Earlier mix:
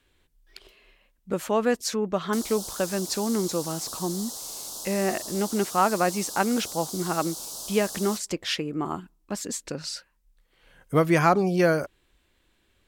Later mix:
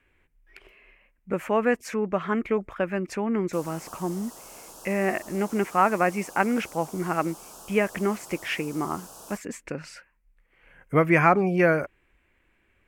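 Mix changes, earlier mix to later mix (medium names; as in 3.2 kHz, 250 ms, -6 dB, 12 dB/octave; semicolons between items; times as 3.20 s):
background: entry +1.20 s; master: add resonant high shelf 3 kHz -9 dB, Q 3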